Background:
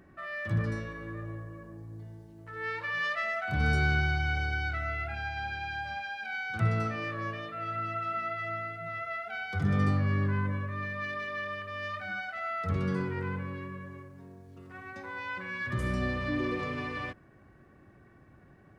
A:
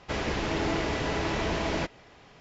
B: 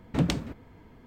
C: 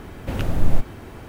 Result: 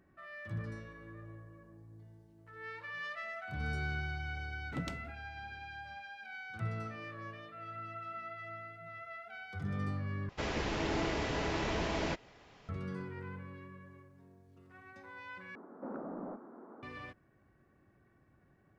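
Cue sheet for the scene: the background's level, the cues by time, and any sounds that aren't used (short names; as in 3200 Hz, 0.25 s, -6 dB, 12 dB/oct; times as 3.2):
background -10.5 dB
4.58 add B -14.5 dB
10.29 replace with A -5.5 dB
15.55 replace with C -10 dB + elliptic band-pass 220–1300 Hz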